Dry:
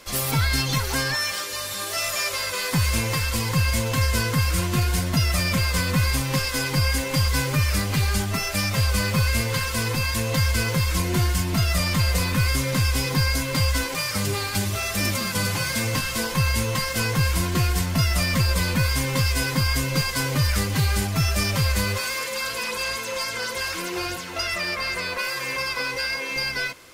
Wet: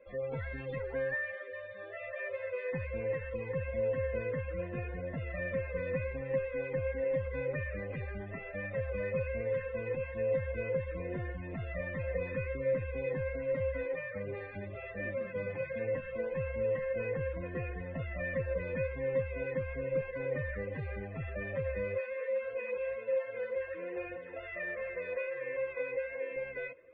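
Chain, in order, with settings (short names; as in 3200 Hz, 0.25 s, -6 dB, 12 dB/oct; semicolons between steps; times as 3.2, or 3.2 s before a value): loudest bins only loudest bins 64; vocal tract filter e; notch 2300 Hz, Q 7.7; gain +2 dB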